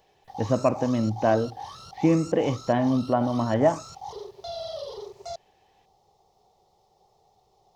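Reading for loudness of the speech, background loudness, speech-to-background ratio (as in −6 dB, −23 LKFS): −24.5 LKFS, −39.5 LKFS, 15.0 dB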